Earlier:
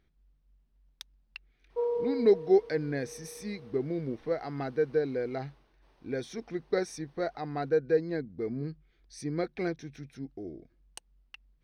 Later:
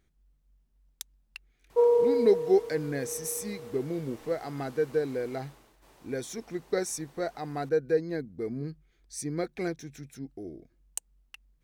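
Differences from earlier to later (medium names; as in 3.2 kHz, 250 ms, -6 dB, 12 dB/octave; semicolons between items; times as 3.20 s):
background +8.5 dB; master: remove Savitzky-Golay filter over 15 samples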